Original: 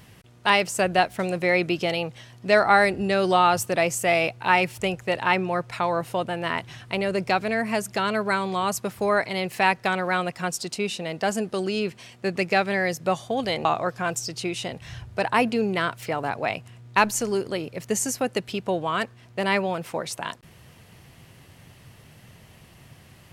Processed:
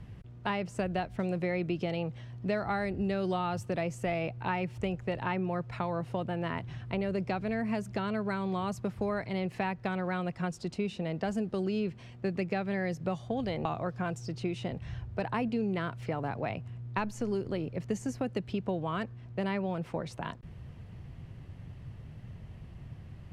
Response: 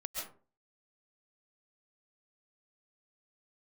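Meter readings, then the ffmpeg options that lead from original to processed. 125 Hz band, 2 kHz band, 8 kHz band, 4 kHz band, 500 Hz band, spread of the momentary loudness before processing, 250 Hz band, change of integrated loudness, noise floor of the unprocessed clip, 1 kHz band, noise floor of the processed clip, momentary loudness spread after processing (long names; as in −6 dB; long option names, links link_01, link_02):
−1.0 dB, −14.5 dB, −21.0 dB, −15.5 dB, −9.5 dB, 9 LU, −3.5 dB, −9.5 dB, −51 dBFS, −12.5 dB, −49 dBFS, 15 LU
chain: -filter_complex "[0:a]aemphasis=mode=reproduction:type=riaa,acrossover=split=180|2700[link_01][link_02][link_03];[link_01]acompressor=threshold=-33dB:ratio=4[link_04];[link_02]acompressor=threshold=-24dB:ratio=4[link_05];[link_03]acompressor=threshold=-40dB:ratio=4[link_06];[link_04][link_05][link_06]amix=inputs=3:normalize=0,volume=-6.5dB"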